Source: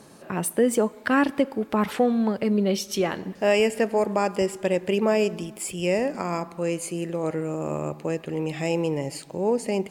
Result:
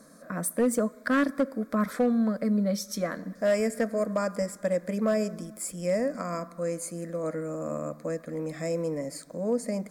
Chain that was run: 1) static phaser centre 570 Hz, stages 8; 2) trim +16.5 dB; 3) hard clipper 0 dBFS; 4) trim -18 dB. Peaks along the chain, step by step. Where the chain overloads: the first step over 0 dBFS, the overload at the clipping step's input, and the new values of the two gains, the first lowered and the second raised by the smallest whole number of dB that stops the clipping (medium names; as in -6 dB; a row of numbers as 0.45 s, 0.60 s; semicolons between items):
-11.0 dBFS, +5.5 dBFS, 0.0 dBFS, -18.0 dBFS; step 2, 5.5 dB; step 2 +10.5 dB, step 4 -12 dB